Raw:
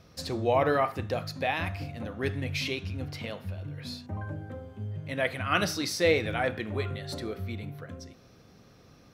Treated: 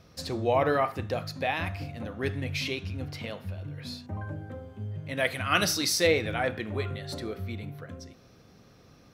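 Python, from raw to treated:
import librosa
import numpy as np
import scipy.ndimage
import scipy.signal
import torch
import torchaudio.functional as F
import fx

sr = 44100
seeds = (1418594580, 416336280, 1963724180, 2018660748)

y = fx.high_shelf(x, sr, hz=3500.0, db=9.0, at=(5.17, 6.07))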